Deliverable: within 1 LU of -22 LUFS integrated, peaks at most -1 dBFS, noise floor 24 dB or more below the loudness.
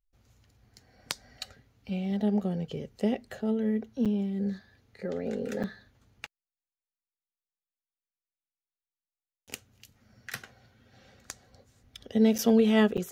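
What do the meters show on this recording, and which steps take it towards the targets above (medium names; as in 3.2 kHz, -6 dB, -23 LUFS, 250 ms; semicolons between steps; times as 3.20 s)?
dropouts 4; longest dropout 7.1 ms; loudness -29.0 LUFS; peak level -9.5 dBFS; loudness target -22.0 LUFS
-> interpolate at 4.05/5.63/12.38/12.97 s, 7.1 ms; trim +7 dB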